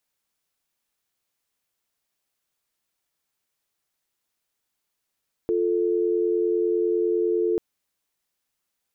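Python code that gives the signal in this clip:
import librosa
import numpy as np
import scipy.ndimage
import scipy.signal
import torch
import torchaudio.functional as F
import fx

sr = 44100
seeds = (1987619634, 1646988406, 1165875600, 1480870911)

y = fx.call_progress(sr, length_s=2.09, kind='dial tone', level_db=-22.5)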